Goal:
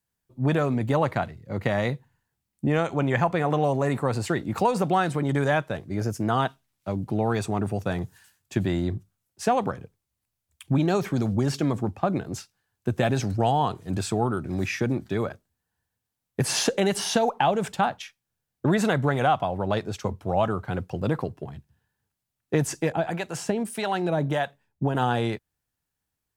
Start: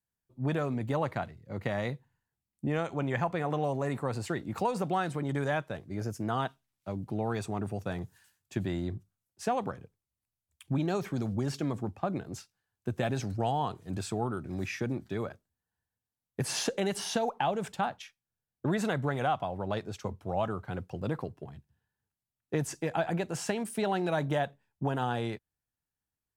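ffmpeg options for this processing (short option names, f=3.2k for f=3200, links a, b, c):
-filter_complex "[0:a]asettb=1/sr,asplit=3[a][b][c];[a]atrim=end=22.924[d];[b]atrim=start=22.92:end=24.95,asetpts=PTS-STARTPTS,afade=t=in:d=0.004:c=qsin,afade=t=out:st=2.026:d=0.004:c=qsin,acrossover=split=690[e][f];[e]aeval=exprs='val(0)*(1-0.7/2+0.7/2*cos(2*PI*1.6*n/s))':c=same[g];[f]aeval=exprs='val(0)*(1-0.7/2-0.7/2*cos(2*PI*1.6*n/s))':c=same[h];[g][h]amix=inputs=2:normalize=0[i];[c]atrim=start=24.946[j];[d][i]acrossfade=d=0.004:c1=hsin:c2=qsin[k];[k][j]acrossfade=d=0.004:c1=qsin:c2=hsin,volume=7.5dB"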